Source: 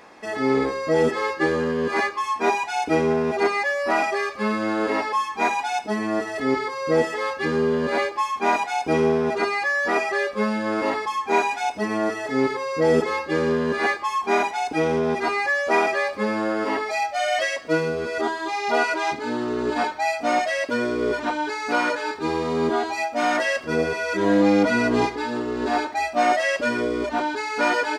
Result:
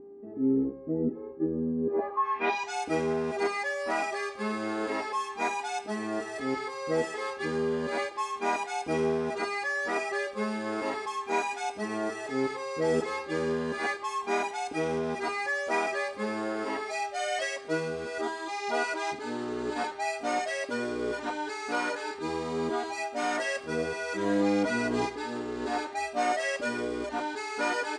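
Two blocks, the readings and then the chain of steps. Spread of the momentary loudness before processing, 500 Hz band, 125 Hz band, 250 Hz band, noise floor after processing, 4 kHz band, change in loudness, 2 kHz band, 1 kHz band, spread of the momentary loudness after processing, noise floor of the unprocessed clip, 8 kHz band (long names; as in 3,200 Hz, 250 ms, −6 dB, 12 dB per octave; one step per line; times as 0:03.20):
5 LU, −8.0 dB, −8.0 dB, −7.5 dB, −42 dBFS, −7.0 dB, −8.0 dB, −8.5 dB, −8.5 dB, 5 LU, −35 dBFS, −4.0 dB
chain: hum with harmonics 400 Hz, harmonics 11, −37 dBFS −8 dB per octave
low-pass filter sweep 280 Hz → 8,900 Hz, 0:01.81–0:02.76
level −8.5 dB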